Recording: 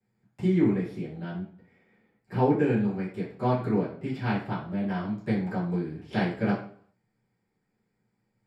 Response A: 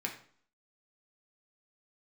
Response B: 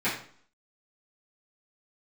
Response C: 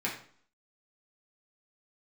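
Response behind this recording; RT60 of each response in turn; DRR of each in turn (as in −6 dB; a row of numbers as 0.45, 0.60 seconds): B; 0.50, 0.50, 0.50 seconds; 0.0, −13.5, −5.5 decibels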